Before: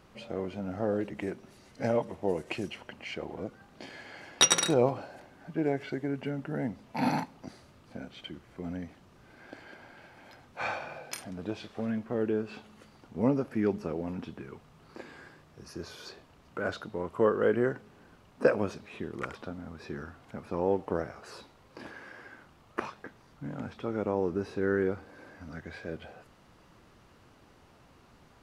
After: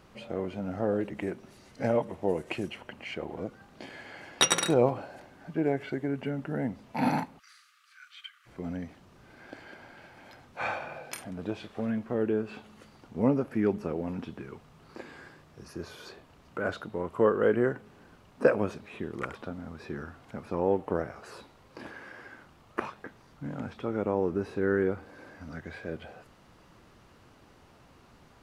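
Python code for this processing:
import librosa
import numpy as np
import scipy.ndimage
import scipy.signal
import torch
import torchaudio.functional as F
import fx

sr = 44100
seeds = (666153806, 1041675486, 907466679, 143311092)

y = fx.brickwall_highpass(x, sr, low_hz=1100.0, at=(7.38, 8.45), fade=0.02)
y = fx.dynamic_eq(y, sr, hz=5200.0, q=1.4, threshold_db=-59.0, ratio=4.0, max_db=-6)
y = y * 10.0 ** (1.5 / 20.0)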